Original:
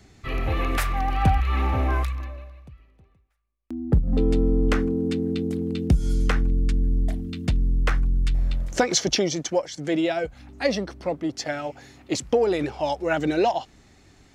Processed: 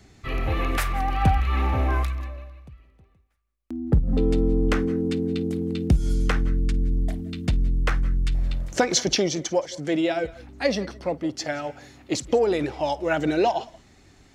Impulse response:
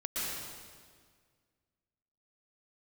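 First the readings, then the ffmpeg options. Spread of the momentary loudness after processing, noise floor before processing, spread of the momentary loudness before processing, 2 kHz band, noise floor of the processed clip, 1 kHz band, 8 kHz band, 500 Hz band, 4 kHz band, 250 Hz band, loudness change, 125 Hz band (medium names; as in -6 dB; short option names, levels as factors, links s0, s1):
8 LU, -58 dBFS, 8 LU, 0.0 dB, -58 dBFS, 0.0 dB, 0.0 dB, 0.0 dB, 0.0 dB, 0.0 dB, 0.0 dB, 0.0 dB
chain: -filter_complex "[0:a]asplit=2[s0][s1];[1:a]atrim=start_sample=2205,afade=t=out:st=0.19:d=0.01,atrim=end_sample=8820,adelay=52[s2];[s1][s2]afir=irnorm=-1:irlink=0,volume=0.119[s3];[s0][s3]amix=inputs=2:normalize=0"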